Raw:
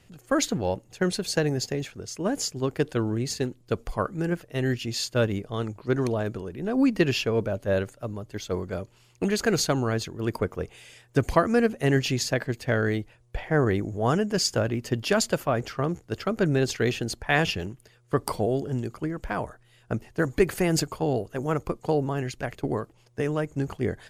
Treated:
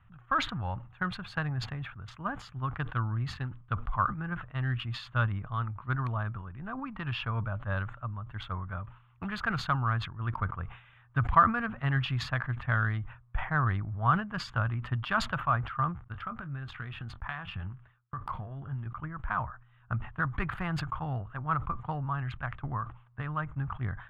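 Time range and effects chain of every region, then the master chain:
6.79–7.27 s: compression 4:1, threshold -22 dBFS + peaking EQ 880 Hz +4.5 dB 0.67 oct
16.04–18.86 s: gate -48 dBFS, range -24 dB + compression 16:1, threshold -28 dBFS + doubling 22 ms -12 dB
whole clip: local Wiener filter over 9 samples; FFT filter 120 Hz 0 dB, 430 Hz -25 dB, 1.2 kHz +7 dB, 2.1 kHz -7 dB, 3.5 kHz -7 dB, 5.8 kHz -30 dB; decay stretcher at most 120 dB/s

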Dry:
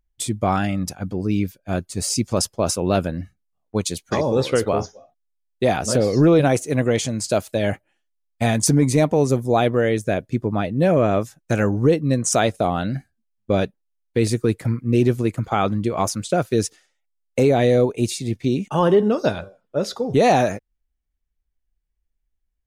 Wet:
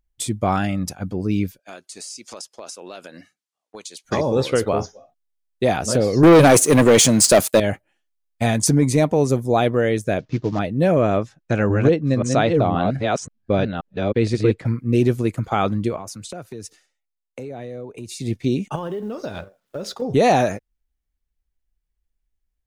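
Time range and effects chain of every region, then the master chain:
1.59–4.05 s: band-pass 290–7400 Hz + tilt EQ +3 dB/octave + compression 5:1, threshold -34 dBFS
6.23–7.60 s: high-pass 140 Hz + peaking EQ 12 kHz +7.5 dB 1.3 oct + waveshaping leveller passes 3
10.19–10.59 s: CVSD coder 32 kbps + comb 6.5 ms, depth 40%
11.17–14.66 s: chunks repeated in reverse 528 ms, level -3 dB + low-pass 4.2 kHz
15.96–18.20 s: band-stop 3.3 kHz, Q 16 + compression, threshold -31 dBFS + three bands expanded up and down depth 40%
18.75–20.02 s: companding laws mixed up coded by A + compression 16:1, threshold -24 dBFS + tape noise reduction on one side only encoder only
whole clip: none

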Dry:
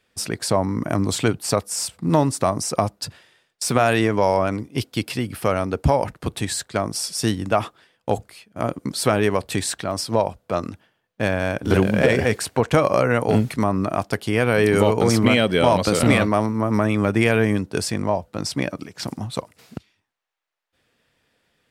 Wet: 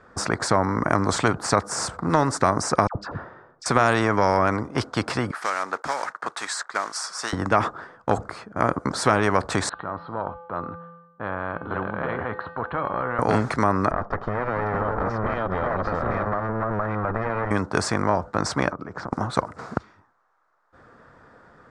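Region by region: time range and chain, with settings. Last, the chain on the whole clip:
2.87–3.66 s: tape spacing loss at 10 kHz 28 dB + phase dispersion lows, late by 80 ms, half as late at 1.1 kHz
5.31–7.33 s: block-companded coder 5-bit + high-pass 1.3 kHz + harmonic tremolo 2.2 Hz, depth 50%, crossover 1.8 kHz
9.69–13.19 s: transient shaper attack -4 dB, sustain +3 dB + rippled Chebyshev low-pass 4.2 kHz, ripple 6 dB + feedback comb 170 Hz, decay 0.9 s, harmonics odd, mix 80%
13.91–17.51 s: comb filter that takes the minimum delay 1.6 ms + compression 4:1, threshold -24 dBFS + tape spacing loss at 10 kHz 41 dB
18.70–19.13 s: low-pass 2.5 kHz 6 dB/octave + compression 4:1, threshold -44 dBFS
whole clip: low-pass 7.6 kHz 24 dB/octave; resonant high shelf 1.9 kHz -13.5 dB, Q 3; spectrum-flattening compressor 2:1; trim -1.5 dB

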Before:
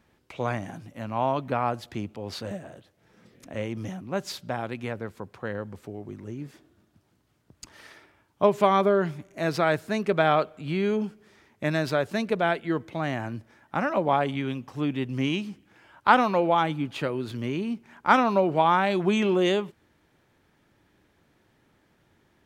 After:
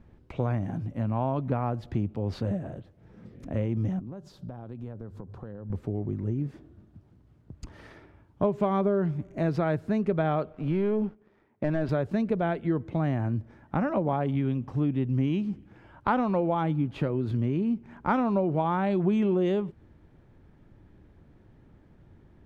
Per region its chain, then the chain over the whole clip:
3.99–5.70 s: peaking EQ 2.2 kHz -10 dB 0.75 oct + hum notches 50/100/150 Hz + compression 4:1, threshold -46 dBFS
10.53–11.89 s: high-pass 580 Hz 6 dB/octave + tape spacing loss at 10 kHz 28 dB + waveshaping leveller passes 2
whole clip: tilt EQ -4 dB/octave; compression 2.5:1, threshold -26 dBFS

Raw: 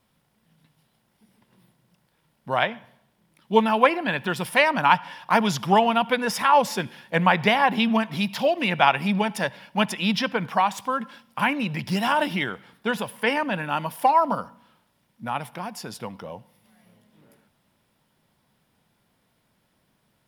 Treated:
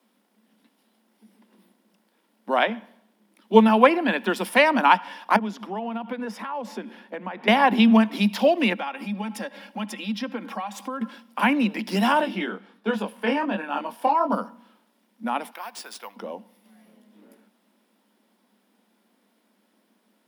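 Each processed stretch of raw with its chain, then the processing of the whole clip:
5.36–7.48 s: compression 3:1, threshold -34 dBFS + treble shelf 3.5 kHz -12 dB
8.73–11.01 s: comb 3.7 ms, depth 60% + compression 2.5:1, threshold -36 dBFS
12.21–14.32 s: treble shelf 6.3 kHz -9.5 dB + band-stop 2 kHz, Q 11 + chorus 1.4 Hz, delay 18.5 ms, depth 7.6 ms
15.51–16.16 s: high-pass 940 Hz + careless resampling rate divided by 3×, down none, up hold
whole clip: steep high-pass 200 Hz 96 dB/octave; bass shelf 350 Hz +10 dB

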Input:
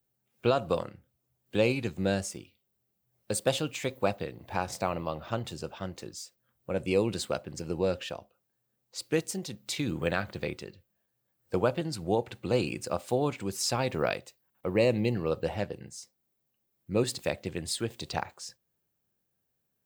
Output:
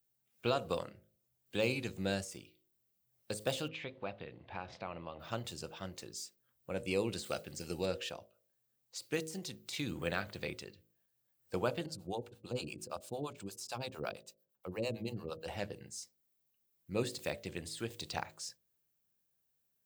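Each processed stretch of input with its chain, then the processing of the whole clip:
3.68–5.20 s: low-pass 3.5 kHz 24 dB/octave + compression 1.5:1, threshold -40 dBFS
7.24–7.86 s: Butterworth band-stop 1 kHz, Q 6.6 + treble shelf 2.7 kHz +10 dB
11.86–15.48 s: peaking EQ 2 kHz -9 dB 0.43 oct + harmonic tremolo 8.8 Hz, depth 100%, crossover 520 Hz
whole clip: de-esser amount 90%; treble shelf 2.2 kHz +8 dB; de-hum 53 Hz, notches 12; trim -7.5 dB

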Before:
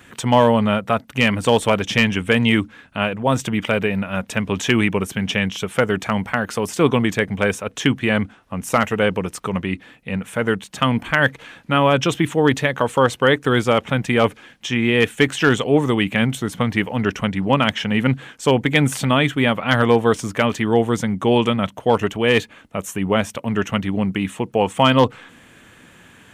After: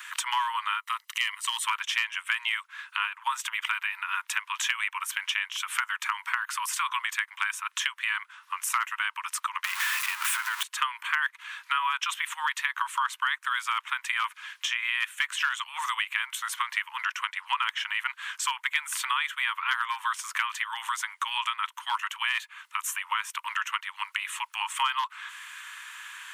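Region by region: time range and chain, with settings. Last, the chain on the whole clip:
0.80–1.64 s: amplifier tone stack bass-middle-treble 10-0-10 + comb 1 ms, depth 55%
9.64–10.63 s: jump at every zero crossing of -21 dBFS + waveshaping leveller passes 1 + compression, threshold -16 dBFS
whole clip: steep high-pass 950 Hz 96 dB/octave; dynamic bell 4.9 kHz, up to -5 dB, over -40 dBFS, Q 0.95; compression 3:1, threshold -36 dBFS; trim +7 dB

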